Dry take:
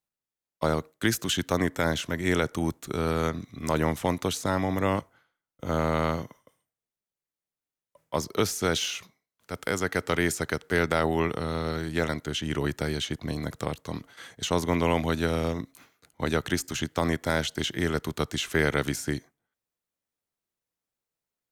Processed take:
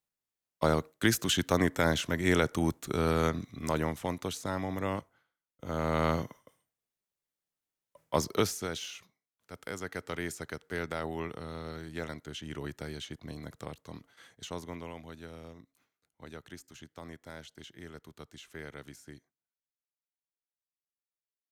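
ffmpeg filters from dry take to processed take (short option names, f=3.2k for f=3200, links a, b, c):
-af "volume=6.5dB,afade=t=out:st=3.4:d=0.53:silence=0.473151,afade=t=in:st=5.74:d=0.45:silence=0.421697,afade=t=out:st=8.27:d=0.41:silence=0.281838,afade=t=out:st=14.26:d=0.67:silence=0.354813"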